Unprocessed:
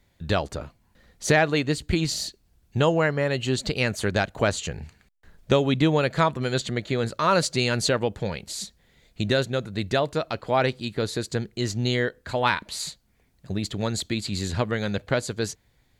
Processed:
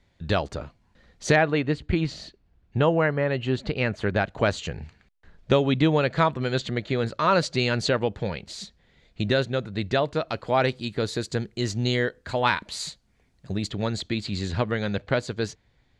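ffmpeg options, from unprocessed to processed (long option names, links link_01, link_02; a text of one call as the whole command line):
ffmpeg -i in.wav -af "asetnsamples=nb_out_samples=441:pad=0,asendcmd='1.36 lowpass f 2600;4.26 lowpass f 4700;10.29 lowpass f 7900;13.7 lowpass f 4700',lowpass=5800" out.wav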